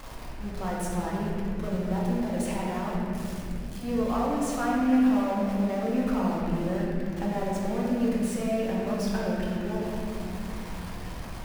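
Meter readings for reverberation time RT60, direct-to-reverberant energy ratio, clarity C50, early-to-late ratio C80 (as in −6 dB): 2.6 s, −6.0 dB, −2.0 dB, −0.5 dB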